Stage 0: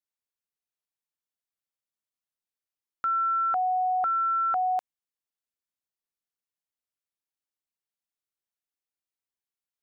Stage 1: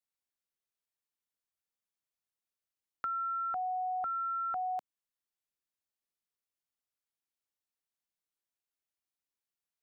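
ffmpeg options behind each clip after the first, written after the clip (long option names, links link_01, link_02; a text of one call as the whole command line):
ffmpeg -i in.wav -filter_complex "[0:a]acrossover=split=290[link_01][link_02];[link_02]acompressor=threshold=-34dB:ratio=3[link_03];[link_01][link_03]amix=inputs=2:normalize=0,volume=-2dB" out.wav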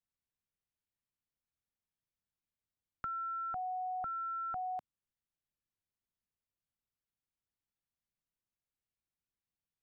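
ffmpeg -i in.wav -af "bass=frequency=250:gain=14,treble=frequency=4000:gain=-7,volume=-4dB" out.wav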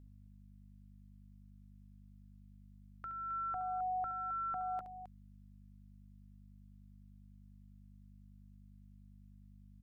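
ffmpeg -i in.wav -filter_complex "[0:a]alimiter=level_in=13dB:limit=-24dB:level=0:latency=1:release=399,volume=-13dB,aeval=exprs='val(0)+0.00126*(sin(2*PI*50*n/s)+sin(2*PI*2*50*n/s)/2+sin(2*PI*3*50*n/s)/3+sin(2*PI*4*50*n/s)/4+sin(2*PI*5*50*n/s)/5)':channel_layout=same,asplit=2[link_01][link_02];[link_02]aecho=0:1:69.97|265.3:0.282|0.282[link_03];[link_01][link_03]amix=inputs=2:normalize=0,volume=2.5dB" out.wav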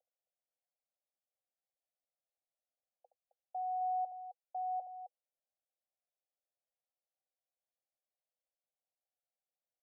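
ffmpeg -i in.wav -af "asuperpass=centerf=630:order=20:qfactor=1.9,volume=2dB" out.wav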